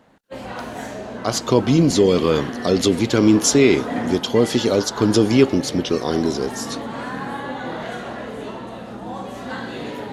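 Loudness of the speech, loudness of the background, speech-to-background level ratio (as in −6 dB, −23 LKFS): −18.0 LKFS, −30.5 LKFS, 12.5 dB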